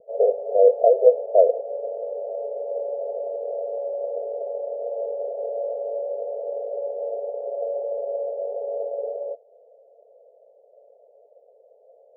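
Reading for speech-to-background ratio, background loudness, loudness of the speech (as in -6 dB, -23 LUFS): 11.0 dB, -29.5 LUFS, -18.5 LUFS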